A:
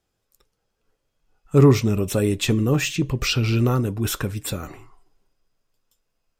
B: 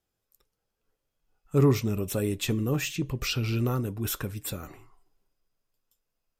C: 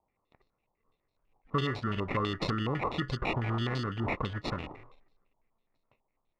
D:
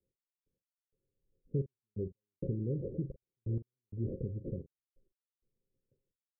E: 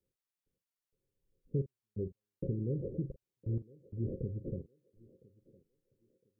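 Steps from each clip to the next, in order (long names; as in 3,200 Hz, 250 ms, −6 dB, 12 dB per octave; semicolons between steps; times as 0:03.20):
parametric band 13,000 Hz +7.5 dB 0.56 octaves; level −7.5 dB
downward compressor 12 to 1, threshold −28 dBFS, peak gain reduction 13 dB; decimation without filtering 28×; low-pass on a step sequencer 12 Hz 900–4,300 Hz
Chebyshev low-pass with heavy ripple 550 Hz, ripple 6 dB; gate pattern "x...x...xxxxx" 130 BPM −60 dB; double-tracking delay 43 ms −13 dB
feedback echo with a high-pass in the loop 1,009 ms, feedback 33%, high-pass 240 Hz, level −20 dB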